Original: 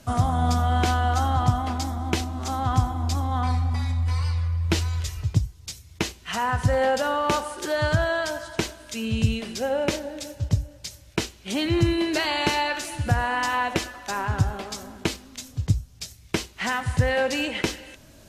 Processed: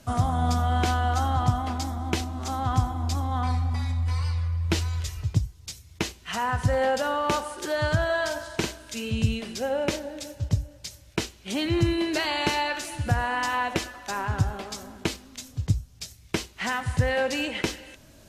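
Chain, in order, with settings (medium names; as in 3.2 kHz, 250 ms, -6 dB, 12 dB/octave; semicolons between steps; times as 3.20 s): 8.05–9.11 s: doubling 47 ms -5 dB; trim -2 dB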